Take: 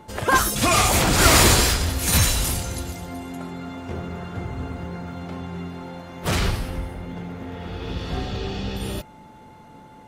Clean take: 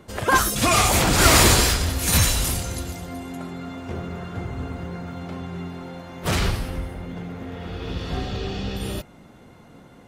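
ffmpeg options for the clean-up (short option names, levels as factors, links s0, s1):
-af "bandreject=f=870:w=30"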